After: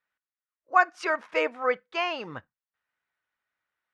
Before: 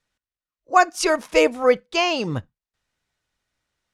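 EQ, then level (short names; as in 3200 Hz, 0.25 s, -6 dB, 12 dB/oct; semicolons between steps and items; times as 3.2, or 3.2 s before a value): band-pass 1600 Hz, Q 1.4; tilt -2 dB/oct; 0.0 dB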